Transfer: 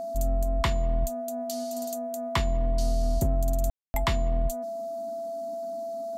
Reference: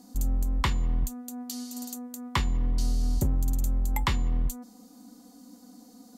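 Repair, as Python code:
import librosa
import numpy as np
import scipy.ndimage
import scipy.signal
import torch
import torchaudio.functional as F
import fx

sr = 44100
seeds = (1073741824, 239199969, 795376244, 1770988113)

y = fx.notch(x, sr, hz=670.0, q=30.0)
y = fx.fix_ambience(y, sr, seeds[0], print_start_s=4.69, print_end_s=5.19, start_s=3.7, end_s=3.94)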